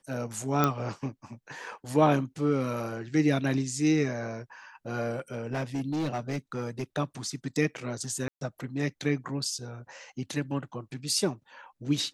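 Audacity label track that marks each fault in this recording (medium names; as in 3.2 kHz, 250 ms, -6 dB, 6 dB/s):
0.640000	0.640000	pop -10 dBFS
5.120000	6.840000	clipped -26.5 dBFS
8.280000	8.410000	dropout 132 ms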